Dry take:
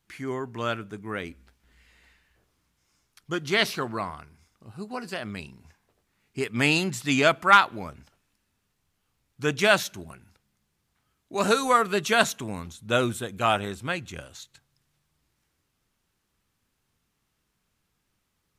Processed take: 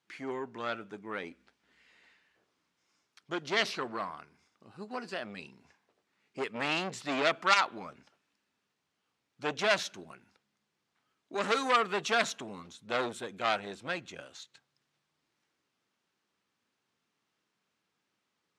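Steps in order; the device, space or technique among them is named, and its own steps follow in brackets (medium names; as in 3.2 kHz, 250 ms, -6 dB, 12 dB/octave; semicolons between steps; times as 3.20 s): public-address speaker with an overloaded transformer (transformer saturation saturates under 3.9 kHz; band-pass 240–5900 Hz); trim -2.5 dB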